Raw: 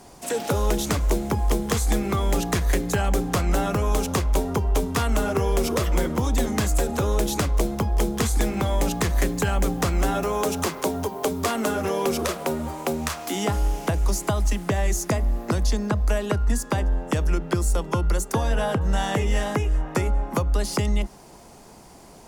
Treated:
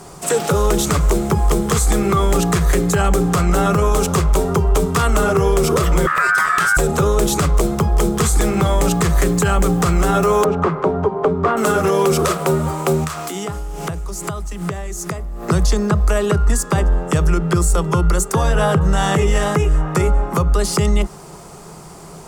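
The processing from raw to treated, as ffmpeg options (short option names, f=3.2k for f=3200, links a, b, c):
-filter_complex "[0:a]asettb=1/sr,asplit=3[a][b][c];[a]atrim=end=6.074[d];[b]atrim=start=6.07:end=6.77,asetpts=PTS-STARTPTS,afade=t=in:d=0.004:c=qsin,afade=t=out:st=0.696:d=0.004:c=qsin,aeval=exprs='val(0)*sin(2*PI*1500*n/s)':c=same[e];[c]atrim=start=6.766[f];[d][e]acrossfade=d=0.004:c1=hsin:c2=qsin[g];[g][f]acrossfade=d=0.004:c1=qsin:c2=hsin,asettb=1/sr,asplit=3[h][i][j];[h]atrim=end=10.444[k];[i]atrim=start=10.44:end=11.57,asetpts=PTS-STARTPTS,afade=t=in:d=0.004:c=qsin,afade=t=out:st=1.126:d=0.004:c=qsin,lowpass=1.5k[l];[j]atrim=start=11.566[m];[k][l]acrossfade=d=0.004:c1=hsin:c2=qsin[n];[n][m]acrossfade=d=0.004:c1=qsin:c2=hsin,asettb=1/sr,asplit=3[o][p][q];[o]atrim=end=13.044[r];[p]atrim=start=13.04:end=15.43,asetpts=PTS-STARTPTS,afade=t=in:d=0.004:c=qsin,afade=t=out:st=2.386:d=0.004:c=qsin,acompressor=threshold=-31dB:ratio=8:attack=3.2:release=140:knee=1:detection=peak[s];[q]atrim=start=15.426[t];[r][s]acrossfade=d=0.004:c1=hsin:c2=qsin[u];[u][t]acrossfade=d=0.004:c1=qsin:c2=hsin,equalizer=f=160:t=o:w=0.33:g=12,equalizer=f=250:t=o:w=0.33:g=-7,equalizer=f=400:t=o:w=0.33:g=6,equalizer=f=1.25k:t=o:w=0.33:g=9,equalizer=f=8k:t=o:w=0.33:g=6,alimiter=limit=-14dB:level=0:latency=1:release=22,volume=7dB"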